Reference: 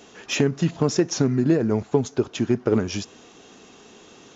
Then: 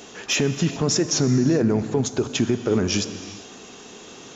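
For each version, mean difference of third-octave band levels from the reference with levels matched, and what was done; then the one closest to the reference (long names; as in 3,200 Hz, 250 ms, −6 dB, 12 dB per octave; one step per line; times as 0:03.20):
5.0 dB: high-shelf EQ 4,800 Hz +5.5 dB
brickwall limiter −16.5 dBFS, peak gain reduction 10 dB
reverb whose tail is shaped and stops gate 440 ms flat, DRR 11.5 dB
level +5 dB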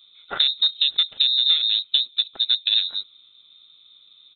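17.5 dB: adaptive Wiener filter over 41 samples
comb filter 0.9 ms, depth 35%
voice inversion scrambler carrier 3,900 Hz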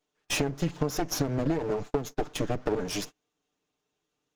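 9.5 dB: lower of the sound and its delayed copy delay 6.7 ms
downward compressor 5 to 1, threshold −24 dBFS, peak gain reduction 9 dB
noise gate −38 dBFS, range −32 dB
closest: first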